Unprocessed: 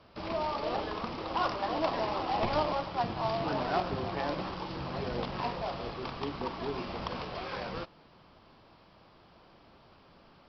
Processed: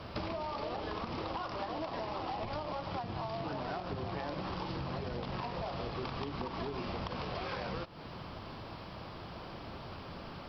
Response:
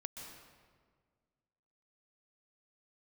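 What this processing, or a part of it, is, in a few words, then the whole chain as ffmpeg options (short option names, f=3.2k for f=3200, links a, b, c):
serial compression, leveller first: -af "equalizer=f=94:t=o:w=1.4:g=5.5,acompressor=threshold=-35dB:ratio=6,acompressor=threshold=-48dB:ratio=6,volume=12dB"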